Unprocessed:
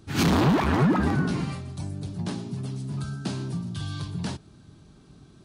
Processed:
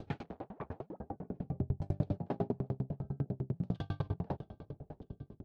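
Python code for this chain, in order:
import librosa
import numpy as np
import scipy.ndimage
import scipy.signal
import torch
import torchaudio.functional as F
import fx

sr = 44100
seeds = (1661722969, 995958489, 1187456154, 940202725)

y = fx.low_shelf(x, sr, hz=190.0, db=4.0)
y = fx.over_compress(y, sr, threshold_db=-33.0, ratio=-1.0)
y = fx.filter_lfo_lowpass(y, sr, shape='saw_down', hz=0.55, low_hz=250.0, high_hz=3500.0, q=0.78)
y = fx.band_shelf(y, sr, hz=590.0, db=11.5, octaves=1.2)
y = fx.echo_feedback(y, sr, ms=635, feedback_pct=53, wet_db=-18.0)
y = fx.tremolo_decay(y, sr, direction='decaying', hz=10.0, depth_db=40)
y = y * librosa.db_to_amplitude(1.5)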